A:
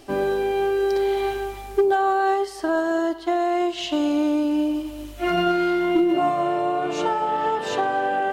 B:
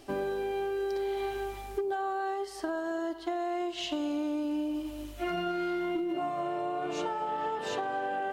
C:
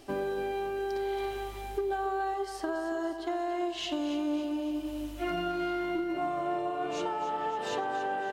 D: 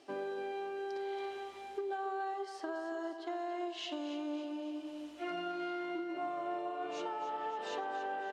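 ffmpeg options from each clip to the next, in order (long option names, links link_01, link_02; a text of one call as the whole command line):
ffmpeg -i in.wav -af "acompressor=threshold=-24dB:ratio=6,volume=-5.5dB" out.wav
ffmpeg -i in.wav -af "aecho=1:1:280|560|840|1120|1400|1680:0.282|0.158|0.0884|0.0495|0.0277|0.0155" out.wav
ffmpeg -i in.wav -af "highpass=280,lowpass=6600,volume=-6dB" out.wav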